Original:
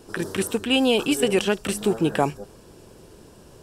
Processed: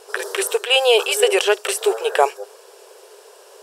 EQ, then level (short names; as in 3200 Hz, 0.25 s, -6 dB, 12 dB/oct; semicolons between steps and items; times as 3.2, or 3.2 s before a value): brick-wall FIR high-pass 380 Hz; +7.0 dB